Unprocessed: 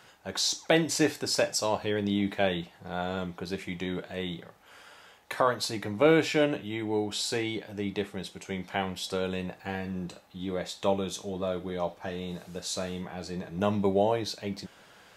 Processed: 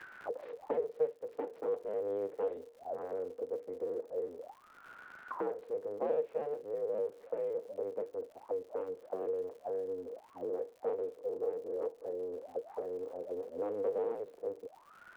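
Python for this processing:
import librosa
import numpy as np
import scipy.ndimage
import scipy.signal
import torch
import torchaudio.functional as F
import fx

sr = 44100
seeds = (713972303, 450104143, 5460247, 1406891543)

p1 = fx.cycle_switch(x, sr, every=2, mode='inverted')
p2 = fx.env_lowpass(p1, sr, base_hz=500.0, full_db=-20.5)
p3 = scipy.signal.sosfilt(scipy.signal.butter(2, 2600.0, 'lowpass', fs=sr, output='sos'), p2)
p4 = fx.quant_dither(p3, sr, seeds[0], bits=8, dither='triangular')
p5 = p3 + (p4 * 10.0 ** (-7.0 / 20.0))
p6 = fx.auto_wah(p5, sr, base_hz=470.0, top_hz=1700.0, q=17.0, full_db=-31.0, direction='down')
p7 = fx.dmg_crackle(p6, sr, seeds[1], per_s=150.0, level_db=-59.0)
p8 = fx.band_squash(p7, sr, depth_pct=70)
y = p8 * 10.0 ** (5.0 / 20.0)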